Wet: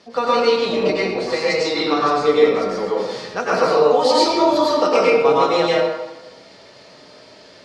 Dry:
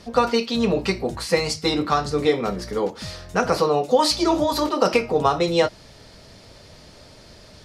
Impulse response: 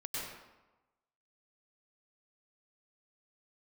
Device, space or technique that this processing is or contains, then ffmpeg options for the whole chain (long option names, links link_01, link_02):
supermarket ceiling speaker: -filter_complex "[0:a]asettb=1/sr,asplit=3[link_01][link_02][link_03];[link_01]atrim=end=0.864[link_04];[link_02]atrim=start=0.86:end=1.97,asetpts=PTS-STARTPTS,afade=type=in:duration=0.004:curve=qsin,afade=type=out:start_time=1.106:duration=0.004:curve=qsin,lowpass=7200[link_05];[link_03]atrim=start=1.966[link_06];[link_04][link_05]acrossfade=duration=0.004:curve1=hsin:curve2=qsin[link_07];[link_07][link_06]acrossfade=duration=0.004:curve1=qsin:curve2=hsin,highpass=290,lowpass=6100,lowshelf=frequency=83:gain=7[link_08];[1:a]atrim=start_sample=2205[link_09];[link_08][link_09]afir=irnorm=-1:irlink=0,volume=2.5dB"